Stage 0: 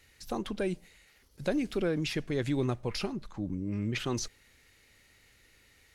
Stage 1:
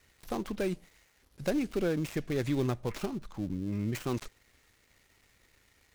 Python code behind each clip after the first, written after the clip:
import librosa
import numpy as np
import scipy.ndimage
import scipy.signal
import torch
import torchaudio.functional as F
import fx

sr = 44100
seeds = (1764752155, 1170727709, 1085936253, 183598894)

y = fx.dead_time(x, sr, dead_ms=0.13)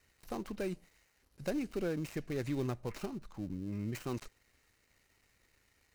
y = fx.notch(x, sr, hz=3400.0, q=11.0)
y = F.gain(torch.from_numpy(y), -5.5).numpy()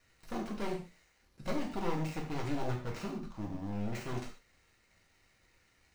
y = np.minimum(x, 2.0 * 10.0 ** (-35.5 / 20.0) - x)
y = fx.peak_eq(y, sr, hz=14000.0, db=-10.0, octaves=0.87)
y = fx.rev_gated(y, sr, seeds[0], gate_ms=170, shape='falling', drr_db=-1.0)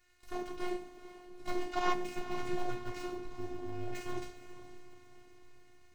y = fx.spec_box(x, sr, start_s=1.72, length_s=0.21, low_hz=620.0, high_hz=7500.0, gain_db=9)
y = fx.echo_diffused(y, sr, ms=455, feedback_pct=53, wet_db=-13.0)
y = fx.robotise(y, sr, hz=358.0)
y = F.gain(torch.from_numpy(y), 1.0).numpy()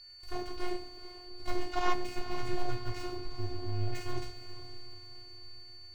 y = fx.low_shelf_res(x, sr, hz=130.0, db=6.5, q=3.0)
y = y + 10.0 ** (-51.0 / 20.0) * np.sin(2.0 * np.pi * 4500.0 * np.arange(len(y)) / sr)
y = F.gain(torch.from_numpy(y), 1.0).numpy()